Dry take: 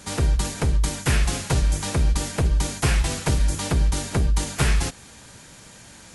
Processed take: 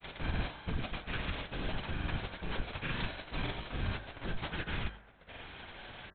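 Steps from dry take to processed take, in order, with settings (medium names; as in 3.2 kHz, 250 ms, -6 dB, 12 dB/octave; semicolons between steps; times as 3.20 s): formants flattened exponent 0.6; in parallel at -6 dB: bit crusher 5-bit; on the sum: upward compressor, threshold -25 dBFS; gate with hold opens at -25 dBFS; feedback comb 790 Hz, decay 0.38 s, mix 70%; reverse; compression 6:1, threshold -35 dBFS, peak gain reduction 13.5 dB; reverse; comb 2 ms; feedback echo behind a band-pass 138 ms, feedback 73%, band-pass 860 Hz, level -17 dB; LPC vocoder at 8 kHz whisper; granulator, pitch spread up and down by 0 st; de-hum 51.51 Hz, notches 38; trim +1 dB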